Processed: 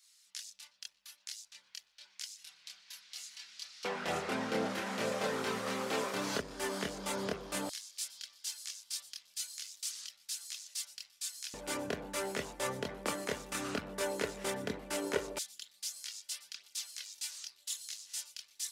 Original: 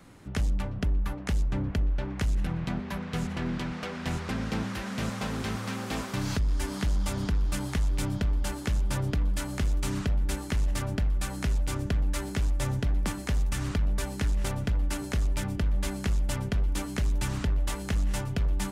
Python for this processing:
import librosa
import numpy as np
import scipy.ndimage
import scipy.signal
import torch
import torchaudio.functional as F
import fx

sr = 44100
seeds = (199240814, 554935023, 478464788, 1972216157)

y = fx.chorus_voices(x, sr, voices=6, hz=0.5, base_ms=26, depth_ms=1.1, mix_pct=50)
y = fx.filter_lfo_highpass(y, sr, shape='square', hz=0.13, low_hz=410.0, high_hz=4800.0, q=1.7)
y = F.gain(torch.from_numpy(y), 2.0).numpy()